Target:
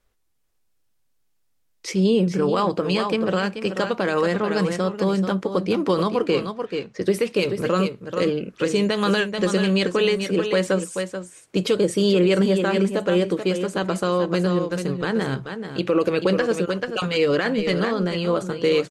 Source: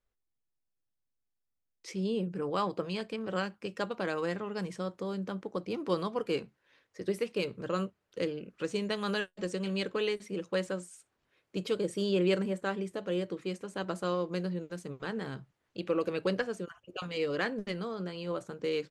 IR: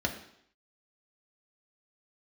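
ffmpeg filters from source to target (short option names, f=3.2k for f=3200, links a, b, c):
-filter_complex "[0:a]asettb=1/sr,asplit=3[a][b][c];[a]atrim=end=6.214[d];[b]atrim=start=6.21:end=7.02,asetpts=PTS-STARTPTS,afade=t=in:d=0.004:c=qsin,afade=t=out:st=0.806:d=0.004:c=qsin,lowpass=6.4k[e];[c]atrim=start=7.016[f];[d][e]acrossfade=d=0.004:c1=hsin:c2=qsin[g];[g][f]acrossfade=d=0.004:c1=qsin:c2=hsin,aecho=1:1:434:0.335,alimiter=level_in=23.5dB:limit=-1dB:release=50:level=0:latency=1,volume=-9dB" -ar 48000 -c:a libmp3lame -b:a 64k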